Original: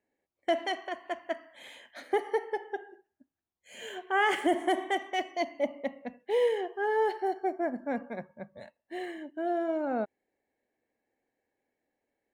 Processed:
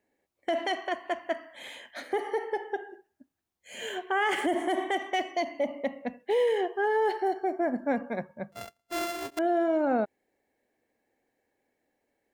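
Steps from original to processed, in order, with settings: 8.52–9.39 s: sorted samples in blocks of 64 samples; peak limiter -24.5 dBFS, peak gain reduction 8.5 dB; trim +5.5 dB

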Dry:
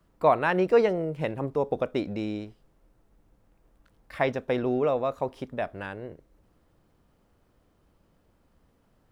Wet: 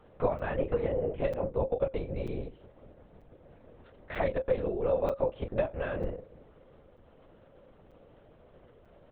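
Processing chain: doubling 29 ms -6 dB; compression 12:1, threshold -37 dBFS, peak gain reduction 23 dB; peaking EQ 540 Hz +12.5 dB 0.46 oct; LPC vocoder at 8 kHz whisper; crackling interface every 0.94 s, samples 256, zero, from 0.39 s; trim +4.5 dB

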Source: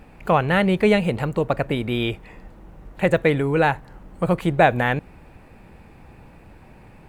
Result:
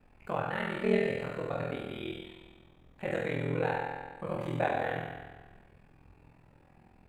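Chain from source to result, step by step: spectral sustain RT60 0.69 s; treble shelf 9.3 kHz -5 dB; feedback comb 70 Hz, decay 1.4 s, harmonics all, mix 90%; ring modulator 21 Hz

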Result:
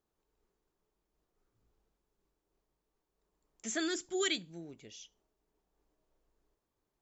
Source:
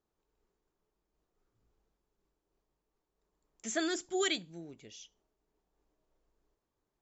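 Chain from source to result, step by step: dynamic bell 740 Hz, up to -7 dB, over -50 dBFS, Q 1.4

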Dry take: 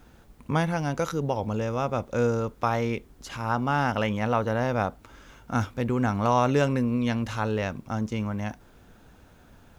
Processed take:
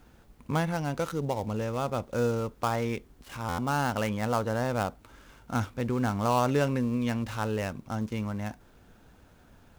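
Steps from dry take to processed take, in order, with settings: dead-time distortion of 0.098 ms; buffer glitch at 3.48 s, samples 512, times 8; trim -3 dB

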